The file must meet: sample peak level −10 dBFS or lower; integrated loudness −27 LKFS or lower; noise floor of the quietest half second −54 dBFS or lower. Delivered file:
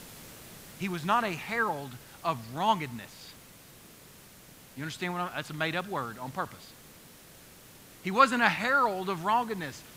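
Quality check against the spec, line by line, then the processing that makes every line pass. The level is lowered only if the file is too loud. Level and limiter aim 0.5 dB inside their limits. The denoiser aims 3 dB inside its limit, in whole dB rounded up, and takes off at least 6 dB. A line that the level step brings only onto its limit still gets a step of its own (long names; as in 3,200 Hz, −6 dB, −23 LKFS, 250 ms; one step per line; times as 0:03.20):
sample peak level −7.0 dBFS: out of spec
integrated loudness −29.5 LKFS: in spec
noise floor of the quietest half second −53 dBFS: out of spec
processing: broadband denoise 6 dB, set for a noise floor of −53 dBFS
brickwall limiter −10.5 dBFS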